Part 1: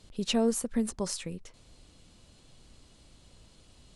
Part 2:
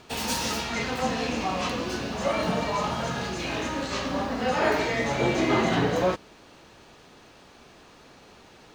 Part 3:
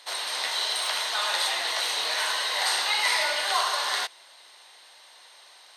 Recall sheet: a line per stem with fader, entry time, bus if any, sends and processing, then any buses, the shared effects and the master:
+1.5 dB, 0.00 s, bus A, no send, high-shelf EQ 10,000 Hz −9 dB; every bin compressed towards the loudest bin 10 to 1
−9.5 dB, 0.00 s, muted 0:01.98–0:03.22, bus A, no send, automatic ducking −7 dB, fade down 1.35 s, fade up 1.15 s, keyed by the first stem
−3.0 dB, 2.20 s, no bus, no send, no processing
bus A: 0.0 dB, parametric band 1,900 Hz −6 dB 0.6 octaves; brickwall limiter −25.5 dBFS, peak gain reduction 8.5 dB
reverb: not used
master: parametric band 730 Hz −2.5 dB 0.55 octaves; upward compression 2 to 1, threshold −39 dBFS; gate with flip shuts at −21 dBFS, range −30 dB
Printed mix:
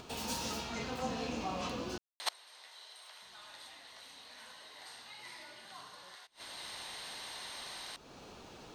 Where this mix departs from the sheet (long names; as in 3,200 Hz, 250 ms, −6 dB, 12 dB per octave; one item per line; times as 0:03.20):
stem 1: muted
stem 3 −3.0 dB → +4.0 dB
master: missing parametric band 730 Hz −2.5 dB 0.55 octaves